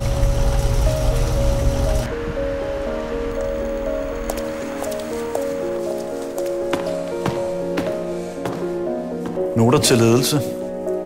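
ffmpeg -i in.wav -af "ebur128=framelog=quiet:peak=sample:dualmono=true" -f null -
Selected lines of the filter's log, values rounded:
Integrated loudness:
  I:         -18.6 LUFS
  Threshold: -28.6 LUFS
Loudness range:
  LRA:         5.5 LU
  Threshold: -39.8 LUFS
  LRA low:   -21.8 LUFS
  LRA high:  -16.3 LUFS
Sample peak:
  Peak:       -4.1 dBFS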